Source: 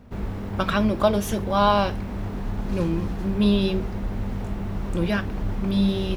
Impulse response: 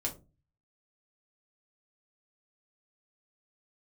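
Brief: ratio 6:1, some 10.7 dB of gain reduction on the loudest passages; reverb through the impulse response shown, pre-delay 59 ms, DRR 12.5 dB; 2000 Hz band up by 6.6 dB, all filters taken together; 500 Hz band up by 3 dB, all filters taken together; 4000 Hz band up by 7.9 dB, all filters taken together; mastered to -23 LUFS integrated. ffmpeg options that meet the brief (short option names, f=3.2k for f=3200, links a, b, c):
-filter_complex "[0:a]equalizer=f=500:t=o:g=3.5,equalizer=f=2k:t=o:g=7.5,equalizer=f=4k:t=o:g=7,acompressor=threshold=-22dB:ratio=6,asplit=2[a][b];[1:a]atrim=start_sample=2205,adelay=59[c];[b][c]afir=irnorm=-1:irlink=0,volume=-15dB[d];[a][d]amix=inputs=2:normalize=0,volume=4.5dB"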